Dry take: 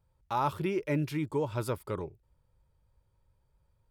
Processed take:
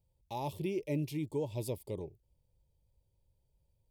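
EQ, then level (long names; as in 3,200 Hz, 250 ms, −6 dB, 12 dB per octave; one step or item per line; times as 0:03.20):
Butterworth band-reject 1,400 Hz, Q 0.8
high-shelf EQ 8,600 Hz +5.5 dB
−4.0 dB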